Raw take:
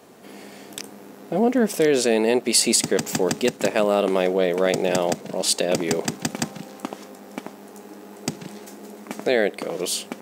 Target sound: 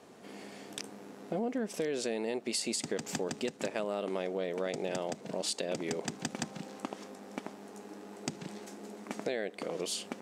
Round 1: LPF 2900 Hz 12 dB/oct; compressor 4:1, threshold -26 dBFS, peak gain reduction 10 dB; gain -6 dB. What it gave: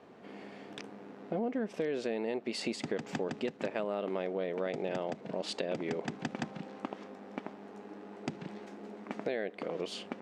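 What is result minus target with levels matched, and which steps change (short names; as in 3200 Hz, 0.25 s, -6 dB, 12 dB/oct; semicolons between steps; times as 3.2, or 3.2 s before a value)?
8000 Hz band -12.5 dB
change: LPF 9100 Hz 12 dB/oct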